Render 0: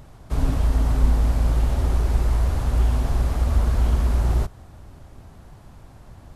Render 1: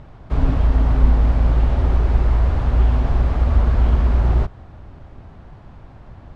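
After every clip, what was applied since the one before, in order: LPF 3000 Hz 12 dB/oct; gain +4 dB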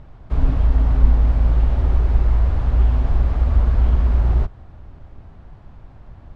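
low shelf 62 Hz +8 dB; gain -4.5 dB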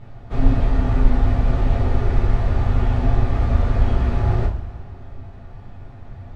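two-slope reverb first 0.27 s, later 1.9 s, from -18 dB, DRR -8.5 dB; gain -4 dB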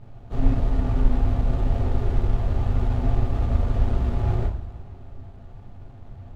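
median filter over 25 samples; gain -4 dB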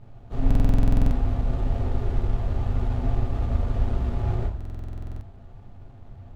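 stuck buffer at 0.46/4.56, samples 2048, times 13; gain -2.5 dB

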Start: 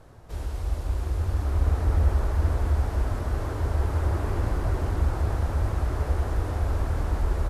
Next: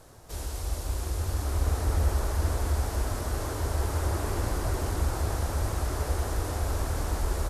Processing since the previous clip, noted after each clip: tone controls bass -4 dB, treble +12 dB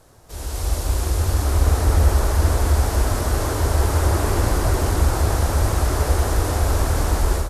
AGC gain up to 10 dB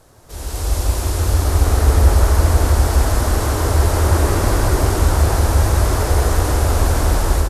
echo 0.161 s -3.5 dB; gain +2 dB

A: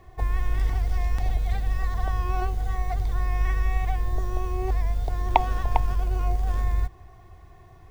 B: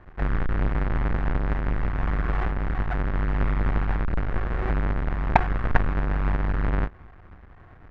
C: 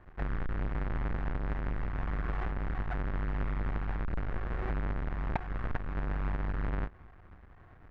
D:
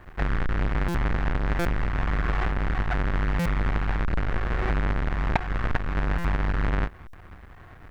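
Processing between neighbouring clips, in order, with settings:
half-waves squared off; synth low-pass 1700 Hz, resonance Q 2; gain -4.5 dB
compressor 6:1, threshold -23 dBFS, peak gain reduction 12 dB; gain -6.5 dB
high shelf 2600 Hz +11 dB; stuck buffer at 0.88/1.59/3.39/6.18/7.07, samples 256, times 10; gain +8 dB

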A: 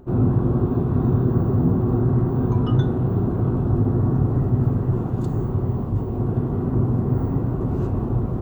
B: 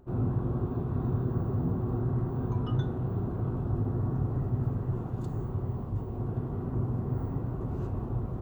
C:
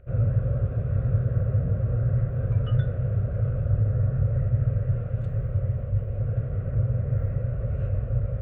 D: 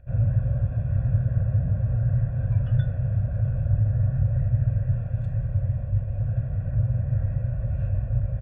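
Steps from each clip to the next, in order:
bell 260 Hz -4 dB 1.7 oct; gain -8.5 dB
EQ curve 110 Hz 0 dB, 340 Hz -25 dB, 550 Hz +6 dB, 890 Hz -28 dB, 1400 Hz -3 dB, 2400 Hz +1 dB, 4800 Hz -21 dB; gain +8.5 dB
comb 1.2 ms, depth 82%; gain -3.5 dB

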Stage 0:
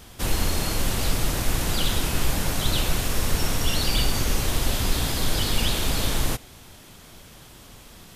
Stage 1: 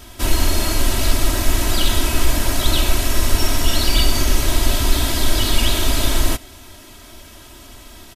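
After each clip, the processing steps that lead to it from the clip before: comb 3.1 ms, depth 81%; gain +3.5 dB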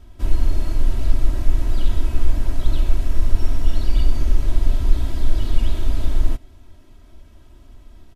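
tilt -3 dB/oct; gain -14 dB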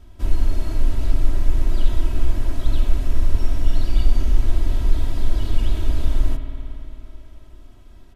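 spring tank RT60 3.4 s, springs 55 ms, chirp 55 ms, DRR 6.5 dB; gain -1 dB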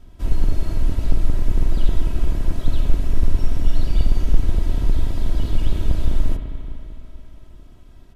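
octaver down 2 oct, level +2 dB; gain -1 dB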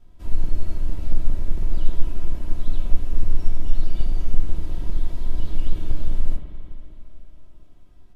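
shoebox room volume 120 m³, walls furnished, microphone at 0.89 m; gain -10 dB

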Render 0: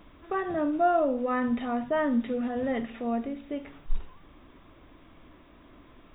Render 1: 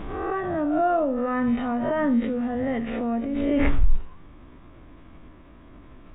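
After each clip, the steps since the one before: spectral swells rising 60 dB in 0.55 s; tone controls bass +6 dB, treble -13 dB; backwards sustainer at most 26 dB/s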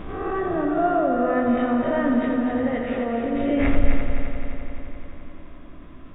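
notch 890 Hz, Q 13; multi-head echo 86 ms, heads first and third, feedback 74%, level -7 dB; on a send at -10.5 dB: reverb RT60 0.45 s, pre-delay 9 ms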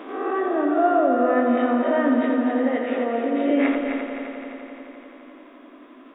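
elliptic high-pass 250 Hz, stop band 40 dB; gain +2.5 dB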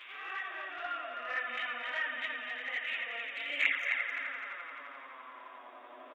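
high-pass sweep 2400 Hz -> 650 Hz, 3.54–6.08; speakerphone echo 0.18 s, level -14 dB; envelope flanger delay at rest 10.4 ms, full sweep at -20.5 dBFS

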